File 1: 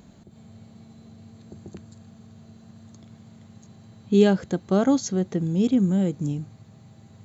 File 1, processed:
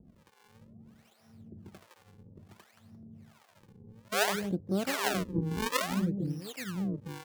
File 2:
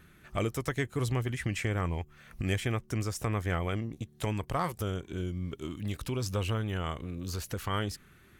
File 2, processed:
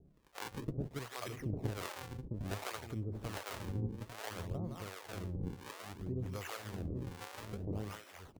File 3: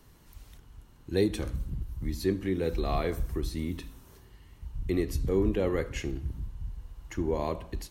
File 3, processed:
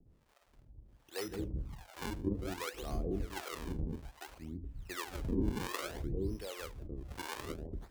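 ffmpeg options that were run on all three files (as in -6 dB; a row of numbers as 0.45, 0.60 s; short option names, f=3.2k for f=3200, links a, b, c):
-filter_complex "[0:a]aecho=1:1:164|228|851:0.398|0.106|0.668,acrusher=samples=39:mix=1:aa=0.000001:lfo=1:lforange=62.4:lforate=0.59,acrossover=split=520[a][b];[a]aeval=exprs='val(0)*(1-1/2+1/2*cos(2*PI*1.3*n/s))':c=same[c];[b]aeval=exprs='val(0)*(1-1/2-1/2*cos(2*PI*1.3*n/s))':c=same[d];[c][d]amix=inputs=2:normalize=0,volume=-5.5dB"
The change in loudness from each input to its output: -9.5, -9.0, -9.0 LU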